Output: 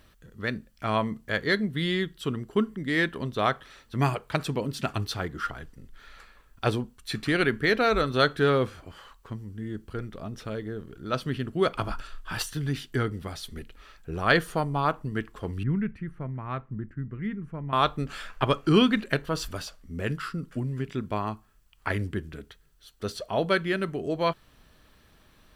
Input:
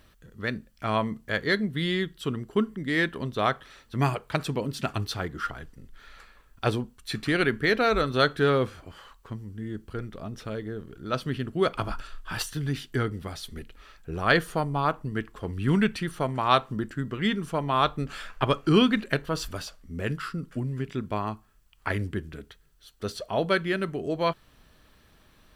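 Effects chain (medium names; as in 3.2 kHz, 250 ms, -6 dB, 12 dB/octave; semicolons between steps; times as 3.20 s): 15.63–17.73 s: FFT filter 120 Hz 0 dB, 750 Hz -16 dB, 2.1 kHz -11 dB, 3.5 kHz -29 dB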